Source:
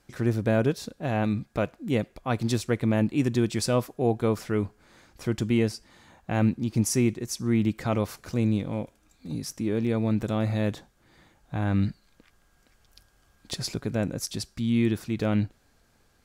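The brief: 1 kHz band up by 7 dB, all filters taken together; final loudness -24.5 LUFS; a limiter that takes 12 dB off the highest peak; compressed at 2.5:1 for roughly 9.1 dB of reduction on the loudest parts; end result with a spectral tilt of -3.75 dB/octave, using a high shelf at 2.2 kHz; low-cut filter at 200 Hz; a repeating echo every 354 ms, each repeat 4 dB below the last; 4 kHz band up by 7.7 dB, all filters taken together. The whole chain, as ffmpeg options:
-af "highpass=200,equalizer=f=1000:t=o:g=8.5,highshelf=f=2200:g=5.5,equalizer=f=4000:t=o:g=4,acompressor=threshold=0.0282:ratio=2.5,alimiter=level_in=1.19:limit=0.0631:level=0:latency=1,volume=0.841,aecho=1:1:354|708|1062|1416|1770|2124|2478|2832|3186:0.631|0.398|0.25|0.158|0.0994|0.0626|0.0394|0.0249|0.0157,volume=3.76"

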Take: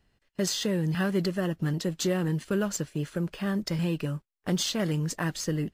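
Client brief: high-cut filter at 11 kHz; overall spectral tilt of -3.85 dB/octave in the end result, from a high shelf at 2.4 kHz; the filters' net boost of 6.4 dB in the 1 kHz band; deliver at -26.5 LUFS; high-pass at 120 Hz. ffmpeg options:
-af "highpass=120,lowpass=11000,equalizer=f=1000:t=o:g=7,highshelf=f=2400:g=6.5,volume=1.12"

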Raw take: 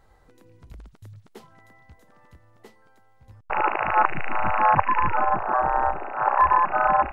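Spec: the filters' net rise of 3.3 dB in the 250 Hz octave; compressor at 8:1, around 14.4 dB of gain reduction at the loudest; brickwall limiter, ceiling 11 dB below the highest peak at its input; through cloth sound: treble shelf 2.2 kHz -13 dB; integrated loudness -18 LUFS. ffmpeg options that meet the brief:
-af "equalizer=f=250:t=o:g=5,acompressor=threshold=0.0355:ratio=8,alimiter=level_in=1.5:limit=0.0631:level=0:latency=1,volume=0.668,highshelf=f=2200:g=-13,volume=13.3"

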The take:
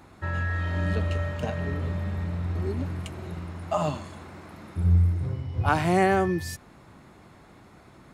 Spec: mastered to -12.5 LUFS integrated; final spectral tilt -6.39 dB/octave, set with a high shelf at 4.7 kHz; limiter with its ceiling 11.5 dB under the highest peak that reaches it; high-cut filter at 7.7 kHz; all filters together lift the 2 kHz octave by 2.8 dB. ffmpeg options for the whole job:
-af "lowpass=7700,equalizer=f=2000:t=o:g=4,highshelf=f=4700:g=-3.5,volume=7.5,alimiter=limit=0.794:level=0:latency=1"

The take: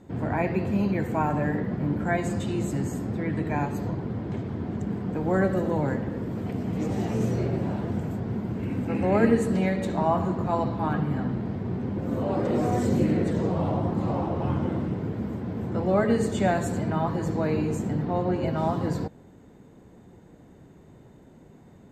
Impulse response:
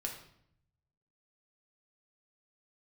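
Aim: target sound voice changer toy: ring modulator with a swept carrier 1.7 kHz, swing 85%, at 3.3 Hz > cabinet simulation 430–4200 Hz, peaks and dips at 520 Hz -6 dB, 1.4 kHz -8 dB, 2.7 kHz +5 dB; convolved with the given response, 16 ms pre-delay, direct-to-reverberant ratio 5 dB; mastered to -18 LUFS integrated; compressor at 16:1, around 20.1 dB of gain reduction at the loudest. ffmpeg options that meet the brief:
-filter_complex "[0:a]acompressor=threshold=0.0178:ratio=16,asplit=2[s0][s1];[1:a]atrim=start_sample=2205,adelay=16[s2];[s1][s2]afir=irnorm=-1:irlink=0,volume=0.562[s3];[s0][s3]amix=inputs=2:normalize=0,aeval=exprs='val(0)*sin(2*PI*1700*n/s+1700*0.85/3.3*sin(2*PI*3.3*n/s))':c=same,highpass=430,equalizer=f=520:t=q:w=4:g=-6,equalizer=f=1400:t=q:w=4:g=-8,equalizer=f=2700:t=q:w=4:g=5,lowpass=f=4200:w=0.5412,lowpass=f=4200:w=1.3066,volume=9.44"

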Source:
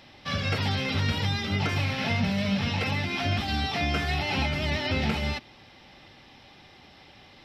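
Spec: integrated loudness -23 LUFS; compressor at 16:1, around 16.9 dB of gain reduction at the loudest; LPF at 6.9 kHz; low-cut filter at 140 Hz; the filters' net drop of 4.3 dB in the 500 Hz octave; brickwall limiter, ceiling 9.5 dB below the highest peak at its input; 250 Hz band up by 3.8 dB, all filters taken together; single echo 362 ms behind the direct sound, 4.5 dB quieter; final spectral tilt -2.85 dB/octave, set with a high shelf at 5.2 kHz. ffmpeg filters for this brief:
-af "highpass=140,lowpass=6900,equalizer=f=250:t=o:g=7.5,equalizer=f=500:t=o:g=-8,highshelf=f=5200:g=8.5,acompressor=threshold=0.0141:ratio=16,alimiter=level_in=3.55:limit=0.0631:level=0:latency=1,volume=0.282,aecho=1:1:362:0.596,volume=9.44"

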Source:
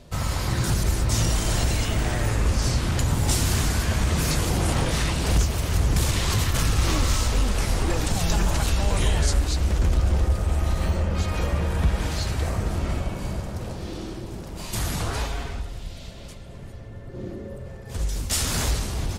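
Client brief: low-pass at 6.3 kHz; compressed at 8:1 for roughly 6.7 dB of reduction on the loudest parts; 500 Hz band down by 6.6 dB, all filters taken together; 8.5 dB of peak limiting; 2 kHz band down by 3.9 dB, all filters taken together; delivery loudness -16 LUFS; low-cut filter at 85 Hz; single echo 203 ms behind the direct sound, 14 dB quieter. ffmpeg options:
-af "highpass=85,lowpass=6300,equalizer=f=500:t=o:g=-8.5,equalizer=f=2000:t=o:g=-4.5,acompressor=threshold=0.0398:ratio=8,alimiter=level_in=1.41:limit=0.0631:level=0:latency=1,volume=0.708,aecho=1:1:203:0.2,volume=10.6"

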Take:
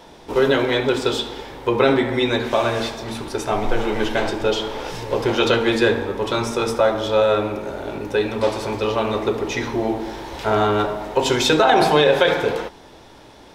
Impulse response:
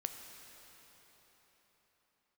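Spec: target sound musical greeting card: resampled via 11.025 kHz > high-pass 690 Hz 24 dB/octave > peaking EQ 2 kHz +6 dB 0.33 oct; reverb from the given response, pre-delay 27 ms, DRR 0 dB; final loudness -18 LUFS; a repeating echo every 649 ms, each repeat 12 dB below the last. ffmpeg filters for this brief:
-filter_complex "[0:a]aecho=1:1:649|1298|1947:0.251|0.0628|0.0157,asplit=2[s0][s1];[1:a]atrim=start_sample=2205,adelay=27[s2];[s1][s2]afir=irnorm=-1:irlink=0,volume=1.06[s3];[s0][s3]amix=inputs=2:normalize=0,aresample=11025,aresample=44100,highpass=f=690:w=0.5412,highpass=f=690:w=1.3066,equalizer=f=2000:t=o:w=0.33:g=6,volume=1.33"

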